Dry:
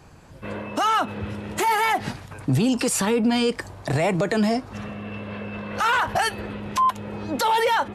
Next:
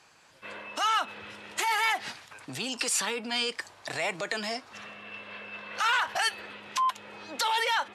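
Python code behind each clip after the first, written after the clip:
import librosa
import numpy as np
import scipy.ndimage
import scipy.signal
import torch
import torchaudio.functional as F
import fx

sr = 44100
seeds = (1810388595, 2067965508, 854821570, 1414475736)

y = fx.bandpass_q(x, sr, hz=3900.0, q=0.54)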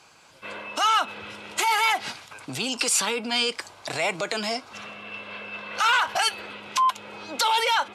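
y = fx.notch(x, sr, hz=1800.0, q=6.9)
y = y * 10.0 ** (5.5 / 20.0)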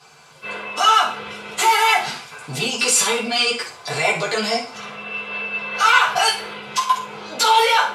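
y = fx.rev_fdn(x, sr, rt60_s=0.48, lf_ratio=0.75, hf_ratio=0.85, size_ms=40.0, drr_db=-8.0)
y = y * 10.0 ** (-2.0 / 20.0)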